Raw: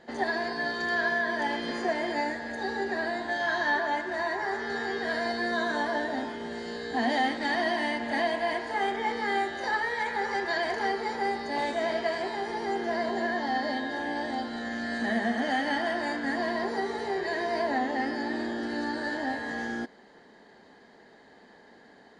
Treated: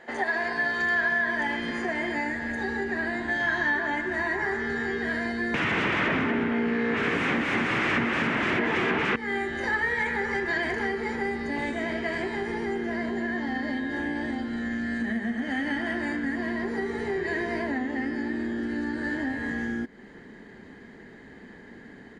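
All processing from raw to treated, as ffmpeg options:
-filter_complex "[0:a]asettb=1/sr,asplit=3[a][b][c];[a]atrim=end=5.544[d];[b]atrim=start=5.54:end=9.16,asetpts=PTS-STARTPTS,afade=t=in:d=0.004:c=qsin,afade=t=out:st=3.616:d=0.004:c=qsin,aeval=exprs='0.168*sin(PI/2*7.94*val(0)/0.168)':c=same,highpass=200,lowpass=2.1k,aecho=1:1:236:0.668,atrim=end_sample=159642[e];[c]atrim=start=9.156[f];[d][e]acrossfade=d=0.004:c1=hsin:c2=qsin[g];[g][f]acrossfade=d=0.004:c1=qsin:c2=hsin,asubboost=boost=11:cutoff=210,acompressor=threshold=-30dB:ratio=3,firequalizer=gain_entry='entry(170,0);entry(370,5);entry(2100,13);entry(4300,-1);entry(7000,6)':delay=0.05:min_phase=1,volume=-2.5dB"

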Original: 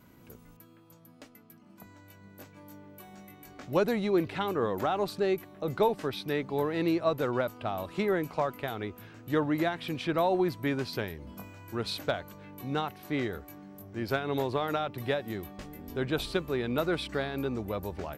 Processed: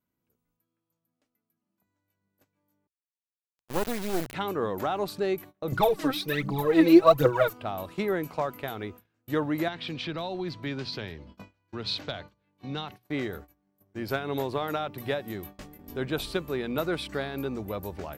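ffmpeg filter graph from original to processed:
-filter_complex "[0:a]asettb=1/sr,asplit=3[a][b][c];[a]atrim=end=2.874[d];[b]atrim=start=2.87:end=4.34,asetpts=PTS-STARTPTS,afade=t=in:d=0.004:c=qsin,afade=t=out:st=1.466:d=0.004:c=qsin,equalizer=f=6.4k:t=o:w=0.87:g=-13,acrusher=bits=3:dc=4:mix=0:aa=0.000001[e];[c]atrim=start=4.336[f];[d][e]acrossfade=d=0.004:c1=hsin:c2=qsin[g];[g][f]acrossfade=d=0.004:c1=qsin:c2=hsin,asettb=1/sr,asplit=3[h][i][j];[h]atrim=end=5.724[k];[i]atrim=start=5.72:end=7.53,asetpts=PTS-STARTPTS,afade=t=in:d=0.004:c=qsin,afade=t=out:st=1.806:d=0.004:c=qsin,aecho=1:1:6.2:0.84,atrim=end_sample=79821,aphaser=in_gain=1:out_gain=1:delay=3.9:decay=0.73:speed=1.3:type=triangular[l];[j]atrim=start=7.526[m];[k][l]acrossfade=d=0.004:c1=hsin:c2=qsin[n];[n][m]acrossfade=d=0.004:c1=qsin:c2=hsin,asettb=1/sr,asplit=3[o][p][q];[o]atrim=end=9.684[r];[p]atrim=start=9.68:end=12.92,asetpts=PTS-STARTPTS,afade=t=in:d=0.004:c=qsin,afade=t=out:st=3.236:d=0.004:c=qsin,lowpass=f=4.3k:t=q:w=1.6,acrossover=split=190|3000[s][t][u];[t]acompressor=threshold=-35dB:ratio=2.5:attack=3.2:release=140:knee=2.83:detection=peak[v];[s][v][u]amix=inputs=3:normalize=0[w];[q]atrim=start=12.916[x];[r][w]acrossfade=d=0.004:c1=hsin:c2=qsin[y];[y][x]acrossfade=d=0.004:c1=qsin:c2=hsin,agate=range=-27dB:threshold=-43dB:ratio=16:detection=peak,highshelf=f=11k:g=7.5,bandreject=f=60:t=h:w=6,bandreject=f=120:t=h:w=6"

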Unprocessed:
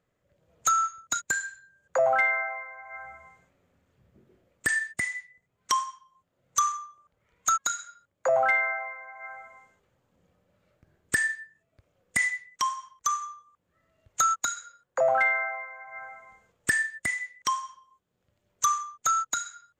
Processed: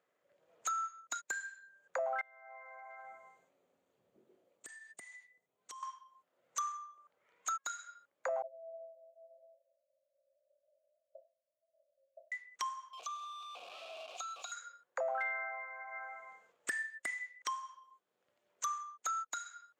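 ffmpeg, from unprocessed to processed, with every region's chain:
-filter_complex "[0:a]asettb=1/sr,asplit=3[a][b][c];[a]atrim=end=2.214[d];[b]atrim=start=2.21:end=5.83,asetpts=PTS-STARTPTS,afade=t=in:d=0.004:c=qsin,afade=t=out:st=3.616:d=0.004:c=qsin,bandreject=f=5.2k:w=9.1,acompressor=threshold=-39dB:ratio=20:attack=3.2:release=140:knee=1:detection=peak,equalizer=f=1.7k:t=o:w=1.7:g=-10[e];[c]atrim=start=5.826[f];[d][e]acrossfade=d=0.004:c1=hsin:c2=qsin[g];[g][f]acrossfade=d=0.004:c1=qsin:c2=hsin,asettb=1/sr,asplit=3[h][i][j];[h]atrim=end=8.424[k];[i]atrim=start=8.42:end=12.32,asetpts=PTS-STARTPTS,afade=t=in:d=0.004:c=qsin,afade=t=out:st=3.896:d=0.004:c=qsin,asuperpass=centerf=600:order=20:qfactor=4.2,asplit=2[l][m];[m]adelay=28,volume=-7.5dB[n];[l][n]amix=inputs=2:normalize=0,atrim=end_sample=171990[o];[j]atrim=start=12.316[p];[k][o]acrossfade=d=0.004:c1=hsin:c2=qsin[q];[q][p]acrossfade=d=0.004:c1=qsin:c2=hsin,asettb=1/sr,asplit=3[r][s][t];[r]atrim=end=12.934[u];[s]atrim=start=12.93:end=14.52,asetpts=PTS-STARTPTS,afade=t=in:d=0.004:c=qsin,afade=t=out:st=1.586:d=0.004:c=qsin,aeval=exprs='val(0)+0.5*0.0282*sgn(val(0))':c=same,asplit=3[v][w][x];[v]bandpass=f=730:t=q:w=8,volume=0dB[y];[w]bandpass=f=1.09k:t=q:w=8,volume=-6dB[z];[x]bandpass=f=2.44k:t=q:w=8,volume=-9dB[aa];[y][z][aa]amix=inputs=3:normalize=0,highshelf=f=2.4k:t=q:w=1.5:g=13[ab];[t]atrim=start=14.516[ac];[u][ab]acrossfade=d=0.004:c1=hsin:c2=qsin[ad];[ad][ac]acrossfade=d=0.004:c1=qsin:c2=hsin,highpass=440,highshelf=f=4.2k:g=-7.5,acompressor=threshold=-44dB:ratio=2"

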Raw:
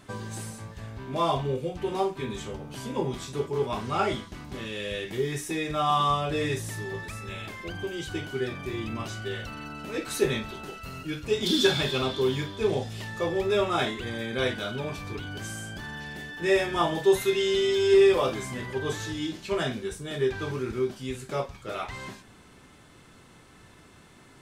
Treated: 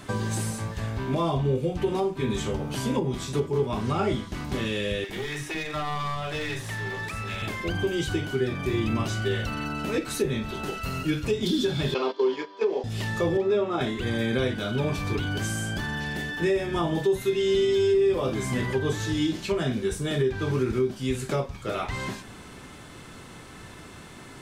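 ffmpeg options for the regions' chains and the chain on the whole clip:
-filter_complex "[0:a]asettb=1/sr,asplit=3[a][b][c];[a]atrim=end=5.044[d];[b]atrim=start=5.04:end=7.42,asetpts=PTS-STARTPTS,afade=t=in:d=0.004:c=qsin,afade=t=out:st=2.376:d=0.004:c=qsin,acrossover=split=660|4000[e][f][g];[e]acompressor=threshold=-40dB:ratio=4[h];[f]acompressor=threshold=-33dB:ratio=4[i];[g]acompressor=threshold=-55dB:ratio=4[j];[h][i][j]amix=inputs=3:normalize=0,aeval=exprs='clip(val(0),-1,0.0133)':c=same,acrossover=split=320[k][l];[k]adelay=50[m];[m][l]amix=inputs=2:normalize=0,atrim=end_sample=104958[n];[c]atrim=start=7.416[o];[d][n]acrossfade=d=0.004:c1=hsin:c2=qsin[p];[p][o]acrossfade=d=0.004:c1=qsin:c2=hsin,asettb=1/sr,asplit=3[q][r][s];[q]atrim=end=11.944[t];[r]atrim=start=11.94:end=12.84,asetpts=PTS-STARTPTS,afade=t=in:d=0.004:c=qsin,afade=t=out:st=0.896:d=0.004:c=qsin,agate=range=-13dB:threshold=-31dB:ratio=16:release=100:detection=peak,highpass=f=330:w=0.5412,highpass=f=330:w=1.3066,equalizer=f=450:t=q:w=4:g=4,equalizer=f=960:t=q:w=4:g=9,equalizer=f=4.6k:t=q:w=4:g=3,lowpass=f=5.7k:w=0.5412,lowpass=f=5.7k:w=1.3066,bandreject=f=3.6k:w=6.7[u];[s]atrim=start=12.836[v];[t][u]acrossfade=d=0.004:c1=hsin:c2=qsin[w];[w][v]acrossfade=d=0.004:c1=qsin:c2=hsin,asettb=1/sr,asplit=3[x][y][z];[x]atrim=end=13.374[aa];[y]atrim=start=13.37:end=13.81,asetpts=PTS-STARTPTS,afade=t=in:d=0.004:c=qsin,afade=t=out:st=0.436:d=0.004:c=qsin,highpass=230,lowpass=4.4k,equalizer=f=2.7k:t=o:w=1.8:g=-5.5[ab];[z]atrim=start=13.806[ac];[aa][ab]acrossfade=d=0.004:c1=hsin:c2=qsin[ad];[ad][ac]acrossfade=d=0.004:c1=qsin:c2=hsin,acrossover=split=380[ae][af];[af]acompressor=threshold=-42dB:ratio=2[ag];[ae][ag]amix=inputs=2:normalize=0,alimiter=level_in=0.5dB:limit=-24dB:level=0:latency=1:release=439,volume=-0.5dB,volume=9dB"

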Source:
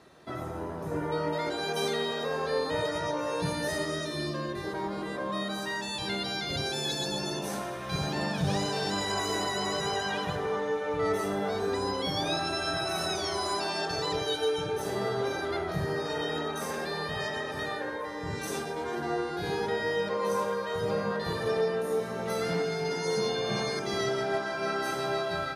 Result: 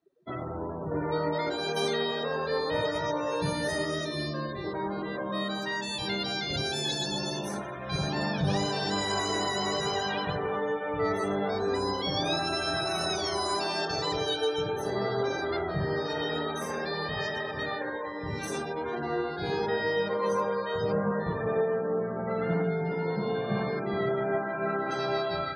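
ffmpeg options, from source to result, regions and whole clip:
-filter_complex "[0:a]asettb=1/sr,asplit=3[a][b][c];[a]atrim=end=20.924[d];[b]atrim=start=20.92:end=24.91,asetpts=PTS-STARTPTS,afade=t=in:d=0.004:c=qsin,afade=t=out:st=3.986:d=0.004:c=qsin,lowpass=2k,equalizer=f=180:w=4.7:g=8[e];[c]atrim=start=24.906[f];[d][e]acrossfade=d=0.004:c1=hsin:c2=qsin[g];[g][f]acrossfade=d=0.004:c1=qsin:c2=hsin,bandreject=f=88.05:t=h:w=4,bandreject=f=176.1:t=h:w=4,bandreject=f=264.15:t=h:w=4,bandreject=f=352.2:t=h:w=4,bandreject=f=440.25:t=h:w=4,bandreject=f=528.3:t=h:w=4,bandreject=f=616.35:t=h:w=4,bandreject=f=704.4:t=h:w=4,bandreject=f=792.45:t=h:w=4,bandreject=f=880.5:t=h:w=4,bandreject=f=968.55:t=h:w=4,bandreject=f=1.0566k:t=h:w=4,bandreject=f=1.14465k:t=h:w=4,bandreject=f=1.2327k:t=h:w=4,bandreject=f=1.32075k:t=h:w=4,bandreject=f=1.4088k:t=h:w=4,bandreject=f=1.49685k:t=h:w=4,bandreject=f=1.5849k:t=h:w=4,bandreject=f=1.67295k:t=h:w=4,afftdn=nr=31:nf=-43,volume=1.5dB"

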